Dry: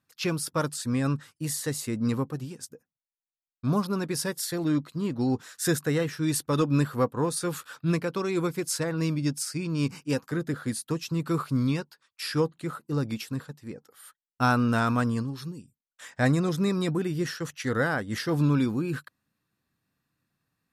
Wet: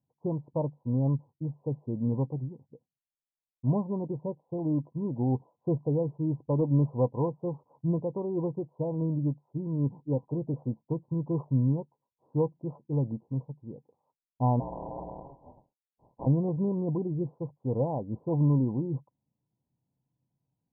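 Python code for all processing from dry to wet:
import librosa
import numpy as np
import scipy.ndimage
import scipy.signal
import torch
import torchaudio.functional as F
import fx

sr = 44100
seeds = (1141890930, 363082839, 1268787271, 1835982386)

y = fx.spec_flatten(x, sr, power=0.13, at=(14.59, 16.25), fade=0.02)
y = fx.ring_mod(y, sr, carrier_hz=420.0, at=(14.59, 16.25), fade=0.02)
y = fx.dynamic_eq(y, sr, hz=610.0, q=1.2, threshold_db=-41.0, ratio=4.0, max_db=4)
y = scipy.signal.sosfilt(scipy.signal.cheby1(8, 1.0, 1000.0, 'lowpass', fs=sr, output='sos'), y)
y = fx.peak_eq(y, sr, hz=130.0, db=8.0, octaves=0.39)
y = y * 10.0 ** (-4.0 / 20.0)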